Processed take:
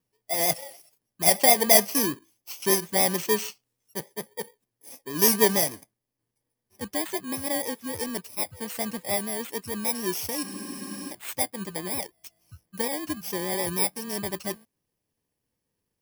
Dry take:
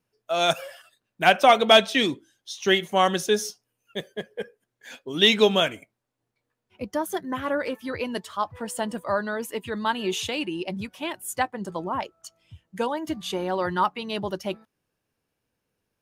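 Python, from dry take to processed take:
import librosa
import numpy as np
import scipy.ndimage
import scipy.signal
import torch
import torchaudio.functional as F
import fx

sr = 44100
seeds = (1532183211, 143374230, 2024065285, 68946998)

y = fx.bit_reversed(x, sr, seeds[0], block=32)
y = fx.vibrato(y, sr, rate_hz=6.7, depth_cents=43.0)
y = fx.spec_freeze(y, sr, seeds[1], at_s=10.46, hold_s=0.64)
y = y * 10.0 ** (-1.5 / 20.0)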